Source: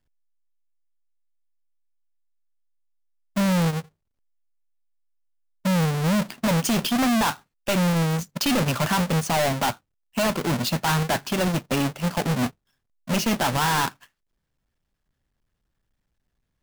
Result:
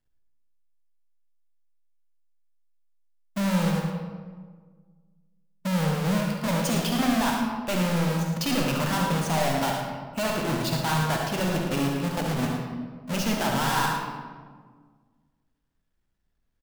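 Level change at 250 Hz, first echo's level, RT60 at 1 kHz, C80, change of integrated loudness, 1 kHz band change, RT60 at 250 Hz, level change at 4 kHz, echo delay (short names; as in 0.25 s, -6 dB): -2.0 dB, -8.0 dB, 1.5 s, 3.0 dB, -2.5 dB, -2.0 dB, 2.2 s, -3.0 dB, 70 ms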